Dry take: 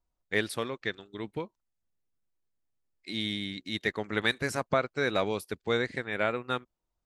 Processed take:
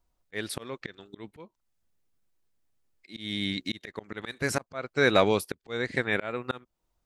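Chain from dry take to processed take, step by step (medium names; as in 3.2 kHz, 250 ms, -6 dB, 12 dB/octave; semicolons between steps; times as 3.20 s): slow attack 335 ms; trim +7 dB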